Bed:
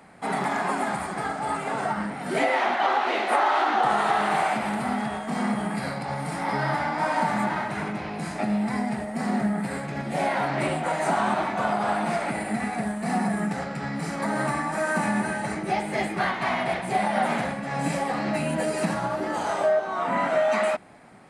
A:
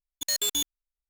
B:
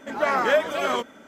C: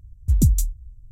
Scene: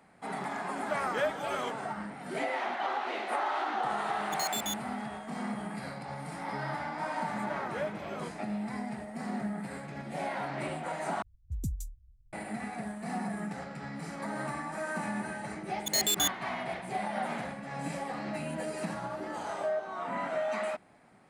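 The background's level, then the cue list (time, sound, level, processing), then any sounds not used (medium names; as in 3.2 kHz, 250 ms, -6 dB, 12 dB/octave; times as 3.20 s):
bed -10 dB
0.69 s: add B -10.5 dB
4.11 s: add A -8.5 dB
7.28 s: add B -17 dB + tilt shelf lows +5 dB
11.22 s: replace with C -18 dB + level-controlled noise filter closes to 760 Hz, open at -15.5 dBFS
15.65 s: add A -1 dB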